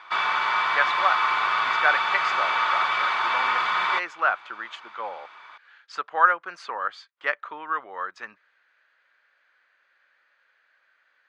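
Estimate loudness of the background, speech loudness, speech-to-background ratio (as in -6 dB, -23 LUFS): -23.0 LUFS, -28.0 LUFS, -5.0 dB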